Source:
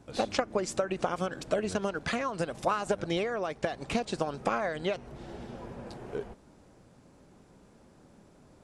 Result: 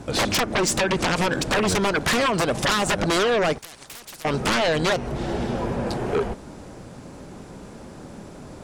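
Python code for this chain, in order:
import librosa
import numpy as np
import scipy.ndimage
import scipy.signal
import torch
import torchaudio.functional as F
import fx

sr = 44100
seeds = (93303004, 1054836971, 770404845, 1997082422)

y = fx.fold_sine(x, sr, drive_db=16, ceiling_db=-14.5)
y = fx.spectral_comp(y, sr, ratio=4.0, at=(3.58, 4.25))
y = y * librosa.db_to_amplitude(-2.5)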